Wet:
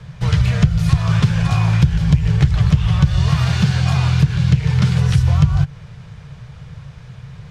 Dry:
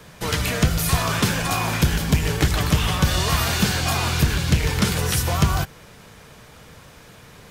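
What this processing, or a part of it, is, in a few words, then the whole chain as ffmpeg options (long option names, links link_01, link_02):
jukebox: -filter_complex "[0:a]asettb=1/sr,asplit=3[link_01][link_02][link_03];[link_01]atrim=end=3.284[link_04];[link_02]atrim=start=3.28:end=5.1,asetpts=PTS-STARTPTS,afade=type=in:duration=0.004:curve=qsin,afade=type=out:start_time=1.816:duration=0.004:curve=qsin,highpass=110[link_05];[link_03]atrim=start=5.096[link_06];[link_04][link_05]acrossfade=duration=0.004:curve1=hsin:curve2=qsin[link_07];[link_07][link_06]acrossfade=duration=0.004:curve1=qsin:curve2=hsin,lowpass=5200,lowshelf=frequency=190:width_type=q:width=3:gain=11,acompressor=threshold=-9dB:ratio=4,volume=-1dB"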